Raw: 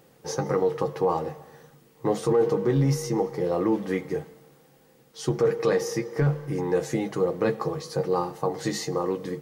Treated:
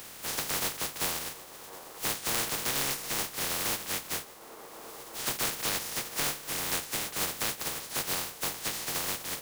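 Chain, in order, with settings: spectral contrast lowered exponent 0.12; band-limited delay 0.352 s, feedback 83%, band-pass 620 Hz, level -21.5 dB; three-band squash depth 70%; gain -7.5 dB

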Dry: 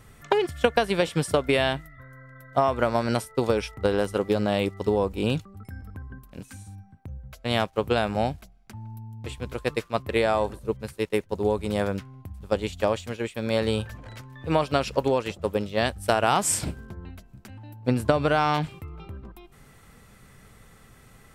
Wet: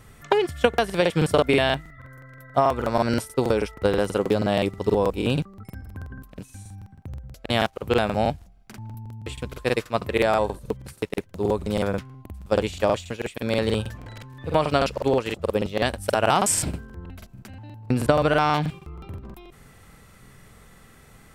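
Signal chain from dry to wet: crackling interface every 0.16 s, samples 2048, repeat, from 0.69; gain +2 dB

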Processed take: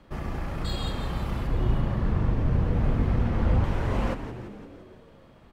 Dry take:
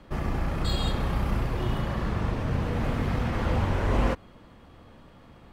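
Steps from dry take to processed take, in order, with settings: 1.47–3.64 tilt -2 dB/oct; on a send: frequency-shifting echo 0.17 s, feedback 62%, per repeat -84 Hz, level -10 dB; on the sum: gain -3.5 dB

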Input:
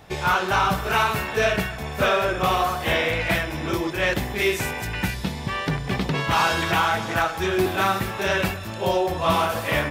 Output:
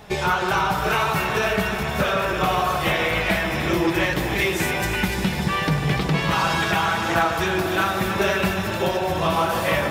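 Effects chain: compressor, threshold -23 dBFS, peak gain reduction 7.5 dB; flange 0.6 Hz, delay 4.7 ms, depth 2 ms, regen +45%; echo with dull and thin repeats by turns 0.148 s, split 1400 Hz, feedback 82%, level -6.5 dB; gain +8.5 dB

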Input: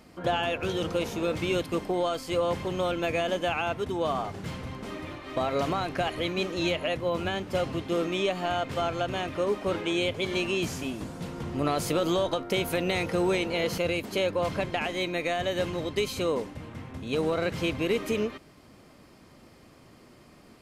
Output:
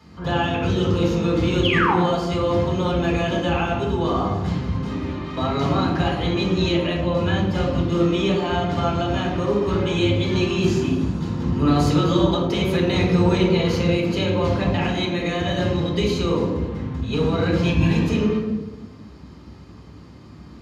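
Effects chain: 1.63–1.94 painted sound fall 710–3500 Hz -25 dBFS; 17.65–18.07 comb 1.2 ms, depth 81%; reverb RT60 1.2 s, pre-delay 3 ms, DRR -4.5 dB; gain -7 dB

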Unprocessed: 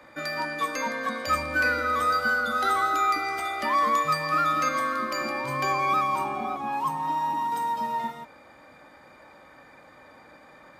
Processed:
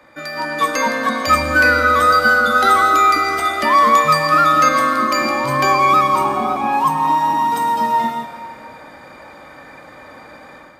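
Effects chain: AGC gain up to 9.5 dB; on a send: reverb RT60 2.2 s, pre-delay 93 ms, DRR 10 dB; on the sum: gain +2 dB

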